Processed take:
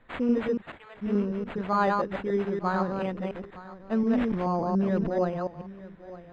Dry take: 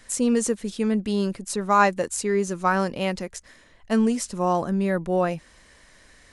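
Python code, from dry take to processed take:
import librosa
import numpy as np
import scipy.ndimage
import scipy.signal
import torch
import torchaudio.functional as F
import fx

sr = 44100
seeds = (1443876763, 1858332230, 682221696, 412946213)

y = fx.reverse_delay(x, sr, ms=144, wet_db=-2.5)
y = fx.highpass(y, sr, hz=fx.line((0.6, 1500.0), (1.01, 590.0)), slope=24, at=(0.6, 1.01), fade=0.02)
y = np.repeat(y[::8], 8)[:len(y)]
y = scipy.signal.sosfilt(scipy.signal.butter(2, 2700.0, 'lowpass', fs=sr, output='sos'), y)
y = fx.high_shelf(y, sr, hz=2100.0, db=-10.0)
y = y + 10.0 ** (-17.0 / 20.0) * np.pad(y, (int(913 * sr / 1000.0), 0))[:len(y)]
y = fx.sustainer(y, sr, db_per_s=34.0, at=(4.05, 5.09))
y = y * 10.0 ** (-5.0 / 20.0)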